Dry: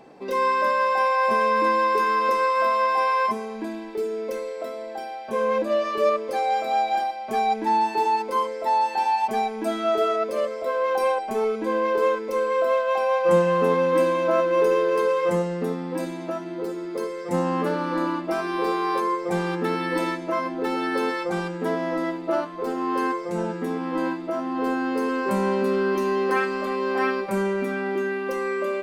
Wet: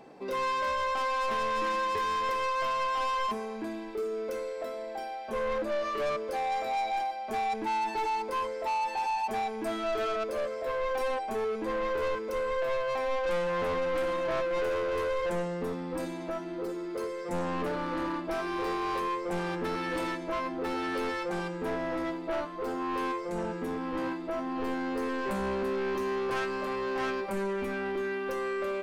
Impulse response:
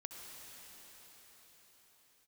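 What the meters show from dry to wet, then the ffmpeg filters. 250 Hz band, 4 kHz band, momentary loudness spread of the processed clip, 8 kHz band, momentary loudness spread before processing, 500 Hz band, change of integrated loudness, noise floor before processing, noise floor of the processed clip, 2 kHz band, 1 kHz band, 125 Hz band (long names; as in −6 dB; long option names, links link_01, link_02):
−8.0 dB, −3.5 dB, 6 LU, can't be measured, 9 LU, −8.0 dB, −8.0 dB, −34 dBFS, −38 dBFS, −6.5 dB, −8.0 dB, −8.5 dB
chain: -af "asoftclip=type=tanh:threshold=-24dB,asubboost=boost=2.5:cutoff=70,volume=-3dB"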